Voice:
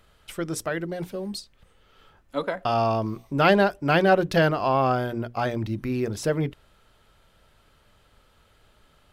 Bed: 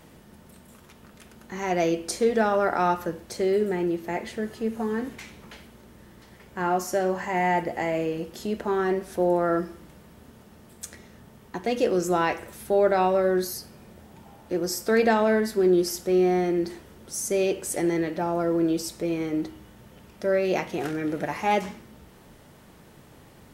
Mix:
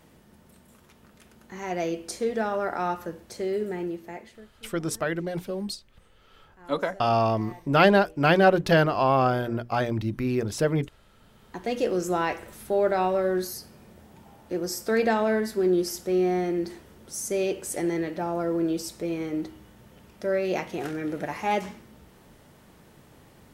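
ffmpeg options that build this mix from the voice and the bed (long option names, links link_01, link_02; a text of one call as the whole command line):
ffmpeg -i stem1.wav -i stem2.wav -filter_complex "[0:a]adelay=4350,volume=0.5dB[link_01];[1:a]volume=16dB,afade=type=out:start_time=3.82:duration=0.67:silence=0.11885,afade=type=in:start_time=11.02:duration=0.68:silence=0.0891251[link_02];[link_01][link_02]amix=inputs=2:normalize=0" out.wav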